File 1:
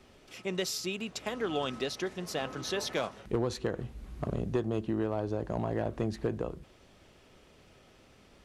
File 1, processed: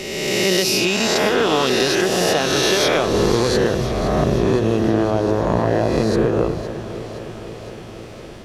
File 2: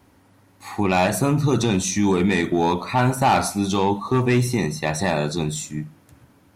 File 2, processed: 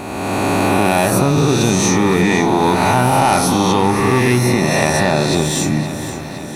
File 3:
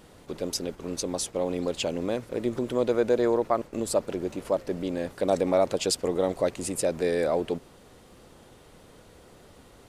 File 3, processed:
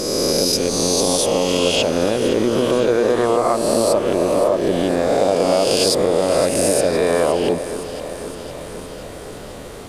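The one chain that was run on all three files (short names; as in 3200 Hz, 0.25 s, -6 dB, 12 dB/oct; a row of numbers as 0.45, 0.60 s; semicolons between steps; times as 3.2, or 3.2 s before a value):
spectral swells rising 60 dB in 1.79 s; dynamic EQ 7400 Hz, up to -7 dB, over -45 dBFS, Q 4.2; compressor 4:1, threshold -28 dBFS; echo with dull and thin repeats by turns 0.257 s, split 1000 Hz, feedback 81%, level -10.5 dB; normalise peaks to -2 dBFS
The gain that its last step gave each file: +14.5, +14.5, +13.5 dB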